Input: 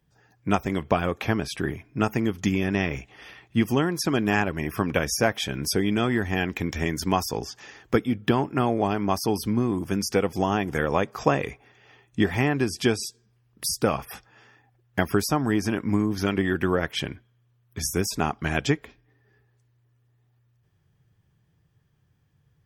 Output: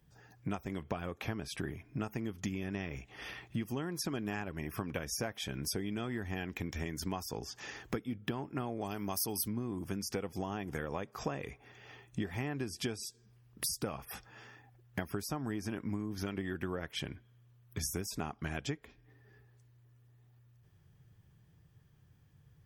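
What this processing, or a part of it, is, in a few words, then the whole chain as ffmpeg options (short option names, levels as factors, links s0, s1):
ASMR close-microphone chain: -filter_complex "[0:a]asettb=1/sr,asplit=3[s0][s1][s2];[s0]atrim=end=8.814[s3];[s1]atrim=start=8.81:end=9.48,asetpts=PTS-STARTPTS,afade=t=in:d=0.004:c=qsin,afade=t=out:st=0.666:d=0.004:c=qsin,aemphasis=mode=production:type=75fm[s4];[s2]atrim=start=9.476[s5];[s3][s4]acrossfade=d=0.004:c1=hsin:c2=qsin[s6];[s6][s5]acrossfade=d=0.004:c1=qsin:c2=hsin,lowshelf=f=180:g=3.5,acompressor=threshold=0.0141:ratio=4,highshelf=f=9000:g=4.5"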